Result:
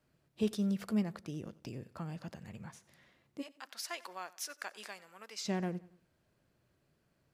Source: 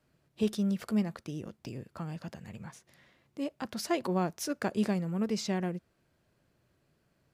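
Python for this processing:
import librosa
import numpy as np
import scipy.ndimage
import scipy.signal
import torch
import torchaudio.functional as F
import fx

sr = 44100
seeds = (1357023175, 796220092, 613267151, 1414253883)

y = fx.highpass(x, sr, hz=1200.0, slope=12, at=(3.41, 5.44), fade=0.02)
y = fx.echo_feedback(y, sr, ms=92, feedback_pct=45, wet_db=-21.0)
y = F.gain(torch.from_numpy(y), -3.0).numpy()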